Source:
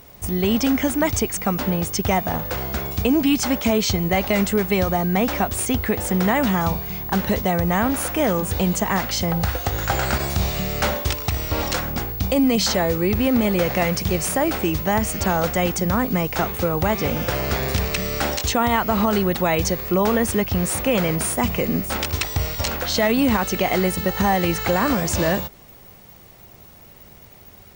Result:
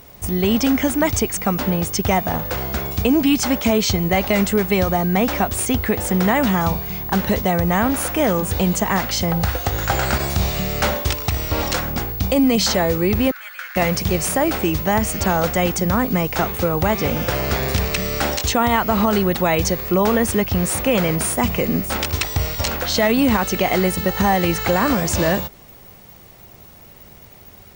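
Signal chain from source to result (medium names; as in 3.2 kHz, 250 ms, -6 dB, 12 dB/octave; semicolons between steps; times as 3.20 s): 13.31–13.76 s: ladder high-pass 1.4 kHz, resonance 75%; trim +2 dB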